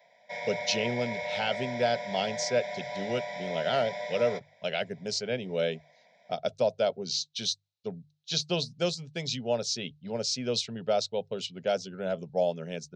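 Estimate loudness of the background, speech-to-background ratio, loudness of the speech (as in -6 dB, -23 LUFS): -36.0 LUFS, 4.5 dB, -31.5 LUFS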